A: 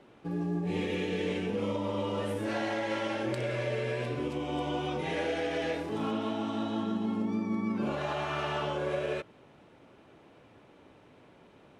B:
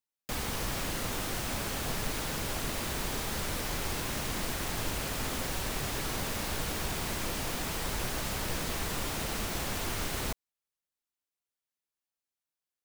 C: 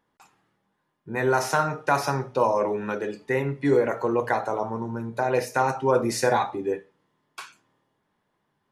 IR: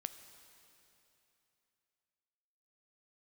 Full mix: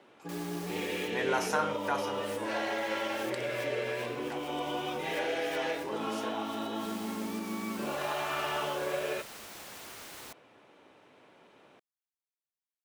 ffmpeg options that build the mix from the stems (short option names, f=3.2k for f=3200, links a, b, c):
-filter_complex "[0:a]volume=1.5dB[a];[1:a]volume=-10dB[b];[2:a]volume=-6dB,afade=t=out:st=1.73:d=0.46:silence=0.251189,asplit=2[c][d];[d]apad=whole_len=566280[e];[b][e]sidechaincompress=threshold=-55dB:ratio=4:attack=16:release=105[f];[a][f][c]amix=inputs=3:normalize=0,highpass=f=500:p=1"